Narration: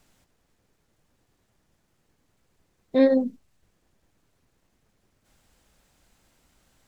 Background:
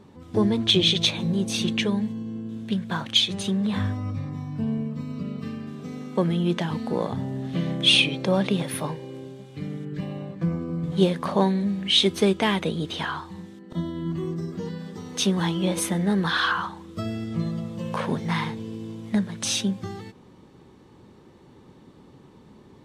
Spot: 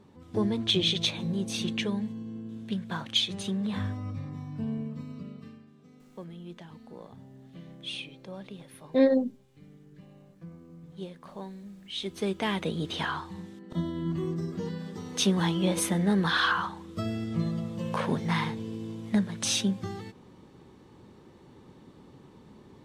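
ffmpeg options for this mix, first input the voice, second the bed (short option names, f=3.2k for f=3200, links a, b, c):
-filter_complex "[0:a]adelay=6000,volume=-3dB[a];[1:a]volume=12dB,afade=t=out:st=4.91:d=0.77:silence=0.199526,afade=t=in:st=11.9:d=1.11:silence=0.125893[b];[a][b]amix=inputs=2:normalize=0"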